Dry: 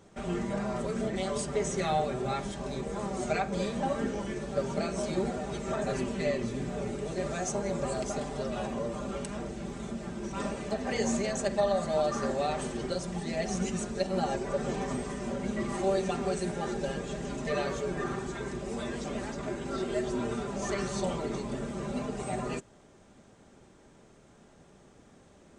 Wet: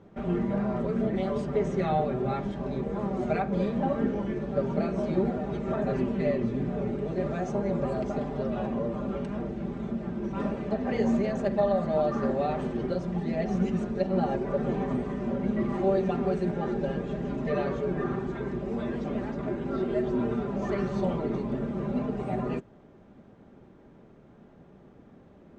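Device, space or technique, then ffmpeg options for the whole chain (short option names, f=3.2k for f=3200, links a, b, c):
phone in a pocket: -filter_complex "[0:a]asettb=1/sr,asplit=3[a][b][c];[a]atrim=end=14.644[d];[b]atrim=start=14.64:end=15.15,asetpts=PTS-STARTPTS,afade=t=in:d=0.004:c=qsin,afade=t=out:st=0.506:d=0.004:c=qsin,bandreject=f=5.3k:w=9.3[e];[c]atrim=start=15.146[f];[d][e]acrossfade=d=0.004:c1=hsin:c2=qsin[g];[g][f]acrossfade=d=0.004:c1=qsin:c2=hsin,lowpass=3.7k,equalizer=f=210:t=o:w=2.2:g=5,highshelf=f=2.4k:g=-9,volume=1dB"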